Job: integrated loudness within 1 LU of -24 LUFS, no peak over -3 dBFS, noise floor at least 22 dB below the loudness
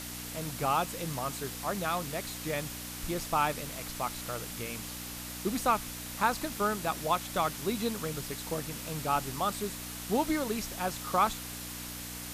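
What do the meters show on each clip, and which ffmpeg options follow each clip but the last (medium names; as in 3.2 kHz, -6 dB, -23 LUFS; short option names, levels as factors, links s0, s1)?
hum 60 Hz; highest harmonic 300 Hz; hum level -43 dBFS; noise floor -41 dBFS; noise floor target -55 dBFS; loudness -33.0 LUFS; peak level -13.5 dBFS; loudness target -24.0 LUFS
-> -af "bandreject=f=60:t=h:w=4,bandreject=f=120:t=h:w=4,bandreject=f=180:t=h:w=4,bandreject=f=240:t=h:w=4,bandreject=f=300:t=h:w=4"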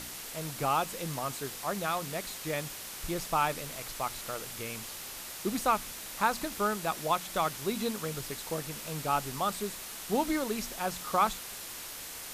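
hum not found; noise floor -43 dBFS; noise floor target -55 dBFS
-> -af "afftdn=nr=12:nf=-43"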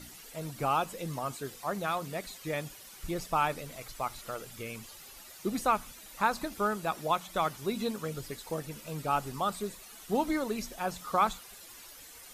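noise floor -50 dBFS; noise floor target -56 dBFS
-> -af "afftdn=nr=6:nf=-50"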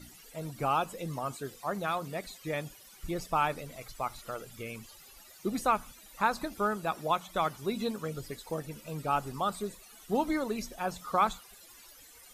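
noise floor -54 dBFS; noise floor target -56 dBFS
-> -af "afftdn=nr=6:nf=-54"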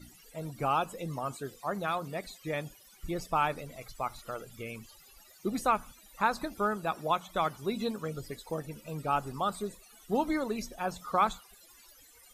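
noise floor -58 dBFS; loudness -33.5 LUFS; peak level -13.5 dBFS; loudness target -24.0 LUFS
-> -af "volume=2.99"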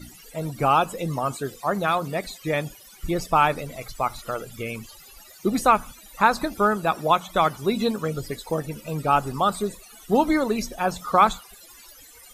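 loudness -24.0 LUFS; peak level -4.0 dBFS; noise floor -48 dBFS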